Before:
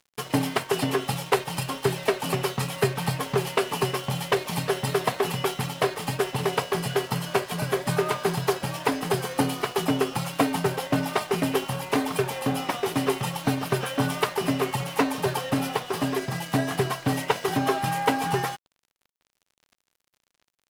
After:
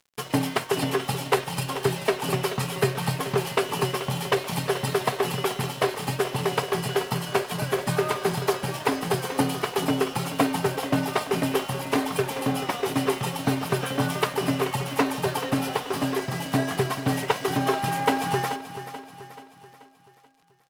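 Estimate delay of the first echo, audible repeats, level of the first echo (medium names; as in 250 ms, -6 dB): 433 ms, 4, -12.0 dB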